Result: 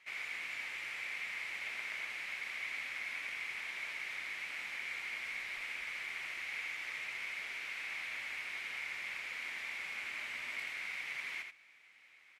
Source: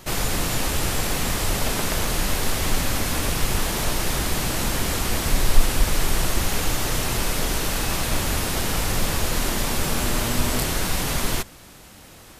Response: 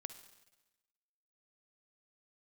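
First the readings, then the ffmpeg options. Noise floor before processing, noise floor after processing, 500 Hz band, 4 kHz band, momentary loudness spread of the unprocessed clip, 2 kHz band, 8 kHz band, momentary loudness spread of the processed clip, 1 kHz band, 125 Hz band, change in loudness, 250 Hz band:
-46 dBFS, -62 dBFS, -31.0 dB, -19.0 dB, 1 LU, -7.5 dB, -30.0 dB, 1 LU, -23.5 dB, under -40 dB, -16.0 dB, -38.0 dB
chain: -filter_complex "[0:a]bandpass=f=2200:t=q:w=8.1:csg=0,asplit=2[s0][s1];[s1]aecho=0:1:83:0.501[s2];[s0][s2]amix=inputs=2:normalize=0,volume=0.794"

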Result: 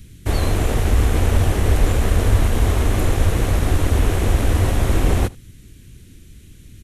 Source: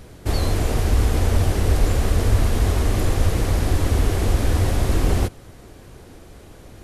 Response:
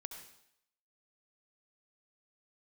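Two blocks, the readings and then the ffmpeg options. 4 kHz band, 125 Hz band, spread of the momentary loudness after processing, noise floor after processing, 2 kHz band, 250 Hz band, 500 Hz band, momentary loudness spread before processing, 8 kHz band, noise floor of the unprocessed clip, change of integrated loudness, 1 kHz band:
+1.0 dB, +2.0 dB, 2 LU, -44 dBFS, +3.0 dB, +2.0 dB, +2.0 dB, 2 LU, +1.5 dB, -44 dBFS, +2.0 dB, +2.5 dB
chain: -filter_complex "[0:a]acrossover=split=290|2000[s0][s1][s2];[s1]acrusher=bits=4:mix=0:aa=0.5[s3];[s0][s3][s2]amix=inputs=3:normalize=0,equalizer=f=4800:w=3.2:g=-6.5,aecho=1:1:78:0.0668,volume=1.26"

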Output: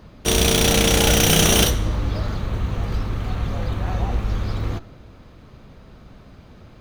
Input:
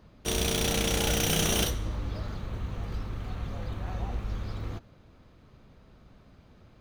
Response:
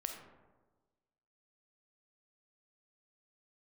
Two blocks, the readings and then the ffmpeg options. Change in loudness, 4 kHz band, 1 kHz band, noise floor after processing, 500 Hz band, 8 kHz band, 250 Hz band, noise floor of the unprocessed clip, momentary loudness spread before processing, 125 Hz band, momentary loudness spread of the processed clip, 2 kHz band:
+10.5 dB, +10.5 dB, +10.5 dB, -46 dBFS, +10.5 dB, +10.5 dB, +10.5 dB, -57 dBFS, 12 LU, +10.5 dB, 12 LU, +10.5 dB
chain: -filter_complex "[0:a]asplit=2[s0][s1];[1:a]atrim=start_sample=2205[s2];[s1][s2]afir=irnorm=-1:irlink=0,volume=0.251[s3];[s0][s3]amix=inputs=2:normalize=0,volume=2.82"

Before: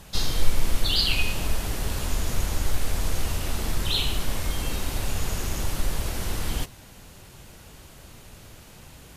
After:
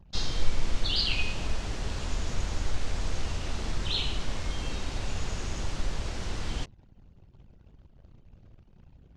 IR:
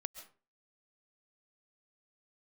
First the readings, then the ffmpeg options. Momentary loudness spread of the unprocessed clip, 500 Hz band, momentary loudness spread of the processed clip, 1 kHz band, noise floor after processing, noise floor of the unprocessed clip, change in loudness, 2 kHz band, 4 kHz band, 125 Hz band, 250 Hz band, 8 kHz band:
22 LU, -4.5 dB, 7 LU, -4.5 dB, -57 dBFS, -48 dBFS, -5.0 dB, -4.5 dB, -4.5 dB, -4.5 dB, -4.5 dB, -9.0 dB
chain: -af "lowpass=f=6900:w=0.5412,lowpass=f=6900:w=1.3066,anlmdn=0.0631,volume=0.596"

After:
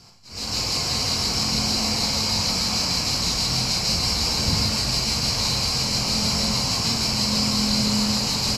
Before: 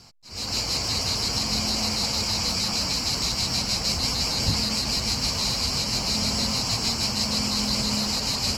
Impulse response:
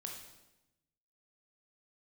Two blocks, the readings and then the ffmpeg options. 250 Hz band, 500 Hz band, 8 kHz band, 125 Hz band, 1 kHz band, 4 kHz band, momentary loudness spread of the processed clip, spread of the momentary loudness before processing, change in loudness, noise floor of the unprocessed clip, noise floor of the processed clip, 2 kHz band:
+4.0 dB, +2.5 dB, +2.5 dB, +3.5 dB, +3.0 dB, +2.5 dB, 2 LU, 1 LU, +2.5 dB, -31 dBFS, -29 dBFS, +2.5 dB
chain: -filter_complex "[1:a]atrim=start_sample=2205[s0];[0:a][s0]afir=irnorm=-1:irlink=0,aresample=32000,aresample=44100,volume=1.78"

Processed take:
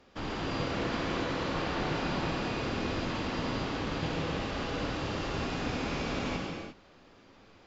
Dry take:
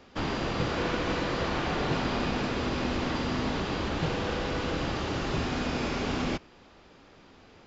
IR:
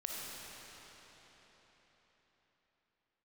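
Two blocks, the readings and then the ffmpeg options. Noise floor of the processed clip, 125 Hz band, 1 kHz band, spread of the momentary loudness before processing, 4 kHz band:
-58 dBFS, -3.0 dB, -3.0 dB, 2 LU, -3.0 dB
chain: -filter_complex "[1:a]atrim=start_sample=2205,afade=t=out:st=0.36:d=0.01,atrim=end_sample=16317,asetrate=37926,aresample=44100[s0];[0:a][s0]afir=irnorm=-1:irlink=0,volume=0.631"

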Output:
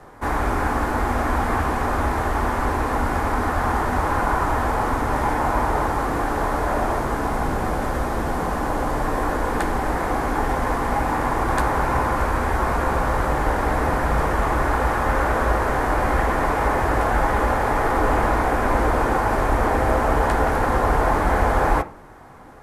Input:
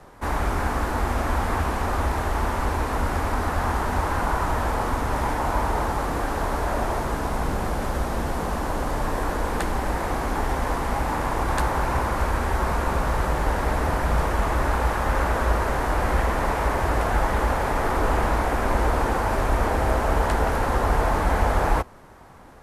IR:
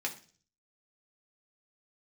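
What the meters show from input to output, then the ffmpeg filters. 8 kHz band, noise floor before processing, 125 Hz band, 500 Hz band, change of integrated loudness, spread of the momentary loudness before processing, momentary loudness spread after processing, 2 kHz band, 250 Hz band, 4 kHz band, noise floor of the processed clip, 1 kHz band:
0.0 dB, -28 dBFS, +0.5 dB, +3.5 dB, +3.0 dB, 4 LU, 4 LU, +3.5 dB, +4.0 dB, -1.0 dB, -25 dBFS, +4.0 dB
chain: -filter_complex "[0:a]asplit=2[s0][s1];[1:a]atrim=start_sample=2205,lowpass=2500[s2];[s1][s2]afir=irnorm=-1:irlink=0,volume=0.562[s3];[s0][s3]amix=inputs=2:normalize=0"

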